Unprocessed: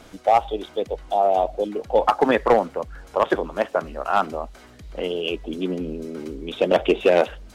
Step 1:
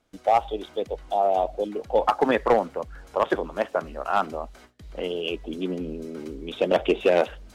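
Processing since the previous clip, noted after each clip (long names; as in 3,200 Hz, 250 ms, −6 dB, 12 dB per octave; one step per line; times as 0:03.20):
noise gate with hold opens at −36 dBFS
level −3 dB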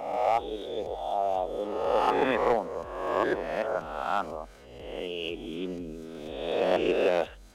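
peak hold with a rise ahead of every peak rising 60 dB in 1.18 s
level −7.5 dB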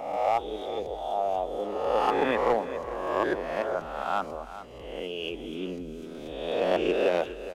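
single-tap delay 411 ms −13.5 dB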